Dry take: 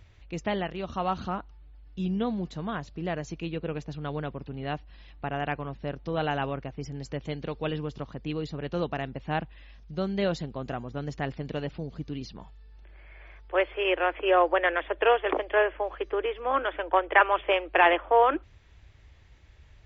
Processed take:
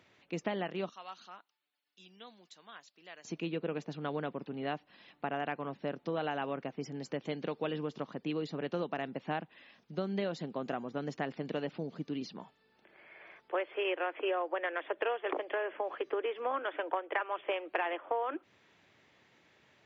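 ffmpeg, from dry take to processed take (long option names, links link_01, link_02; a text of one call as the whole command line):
ffmpeg -i in.wav -filter_complex "[0:a]asettb=1/sr,asplit=3[link_01][link_02][link_03];[link_01]atrim=end=0.894[link_04];[link_02]atrim=start=0.89:end=3.25,asetpts=PTS-STARTPTS,afade=type=in:duration=0.004:curve=qsin,afade=type=out:start_time=2.356:duration=0.004:curve=qsin,aderivative[link_05];[link_03]atrim=start=3.246[link_06];[link_04][link_05]acrossfade=duration=0.004:curve1=hsin:curve2=qsin[link_07];[link_07][link_06]acrossfade=duration=0.004:curve1=qsin:curve2=hsin,asettb=1/sr,asplit=3[link_08][link_09][link_10];[link_08]atrim=end=15.524[link_11];[link_09]atrim=start=15.52:end=16.06,asetpts=PTS-STARTPTS,afade=type=in:duration=0.004:curve=qsin,afade=type=out:start_time=0.536:duration=0.004:curve=qsin,acompressor=threshold=-29dB:ratio=2:attack=3.2:release=140:knee=1:detection=peak[link_12];[link_10]atrim=start=16.056[link_13];[link_11][link_12]acrossfade=duration=0.004:curve1=hsin:curve2=qsin[link_14];[link_14][link_13]acrossfade=duration=0.004:curve1=qsin:curve2=hsin,highpass=frequency=180:width=0.5412,highpass=frequency=180:width=1.3066,highshelf=frequency=4900:gain=-5.5,acompressor=threshold=-30dB:ratio=10" out.wav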